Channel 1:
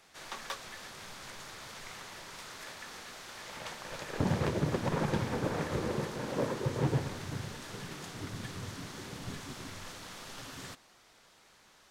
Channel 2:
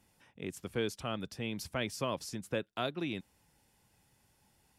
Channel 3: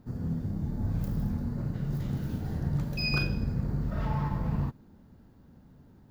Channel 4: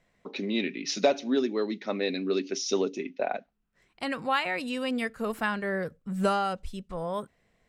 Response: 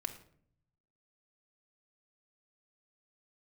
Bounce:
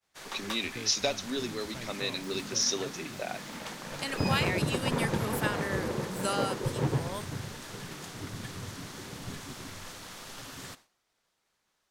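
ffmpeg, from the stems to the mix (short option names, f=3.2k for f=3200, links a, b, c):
-filter_complex "[0:a]highshelf=f=9.2k:g=5.5,volume=1dB[a];[1:a]equalizer=f=70:w=0.51:g=12,volume=-12.5dB[b];[2:a]highpass=f=200:w=0.5412,highpass=f=200:w=1.3066,adelay=1200,volume=-8dB[c];[3:a]crystalizer=i=7:c=0,volume=-9.5dB[d];[a][b][c][d]amix=inputs=4:normalize=0,agate=range=-33dB:threshold=-48dB:ratio=3:detection=peak"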